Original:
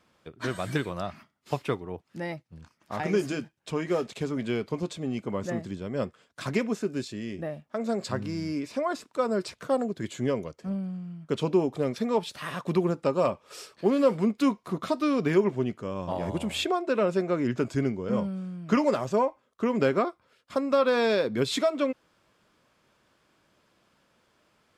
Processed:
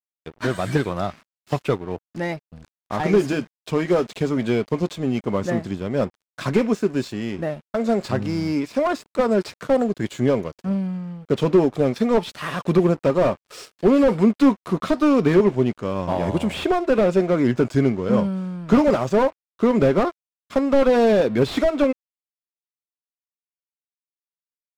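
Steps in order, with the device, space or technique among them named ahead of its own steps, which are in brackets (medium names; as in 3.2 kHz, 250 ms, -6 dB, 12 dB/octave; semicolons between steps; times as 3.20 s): early transistor amplifier (crossover distortion -50 dBFS; slew-rate limiter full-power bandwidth 41 Hz); treble shelf 10 kHz -5 dB; trim +9 dB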